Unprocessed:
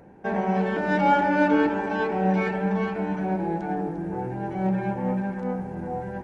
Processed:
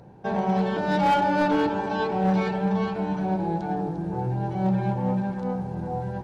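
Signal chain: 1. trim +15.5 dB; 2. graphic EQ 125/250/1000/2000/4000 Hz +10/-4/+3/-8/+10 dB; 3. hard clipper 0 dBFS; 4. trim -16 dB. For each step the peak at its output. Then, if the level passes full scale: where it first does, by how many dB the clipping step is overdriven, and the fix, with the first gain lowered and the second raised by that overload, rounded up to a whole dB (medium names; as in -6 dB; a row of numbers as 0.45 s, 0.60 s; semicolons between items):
+7.0 dBFS, +7.0 dBFS, 0.0 dBFS, -16.0 dBFS; step 1, 7.0 dB; step 1 +8.5 dB, step 4 -9 dB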